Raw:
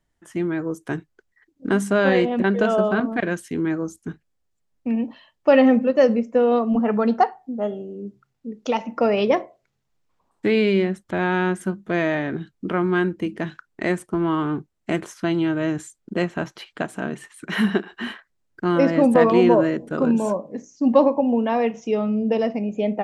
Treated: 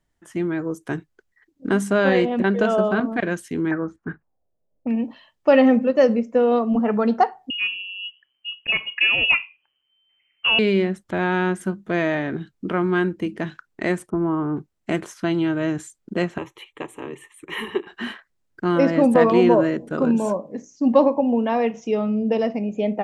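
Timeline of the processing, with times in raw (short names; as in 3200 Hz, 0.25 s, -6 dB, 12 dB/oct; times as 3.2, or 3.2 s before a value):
3.71–4.88 envelope low-pass 560–1800 Hz up, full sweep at -26.5 dBFS
7.5–10.59 inverted band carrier 3100 Hz
14.1–14.57 LPF 1000 Hz
16.38–17.87 fixed phaser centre 1000 Hz, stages 8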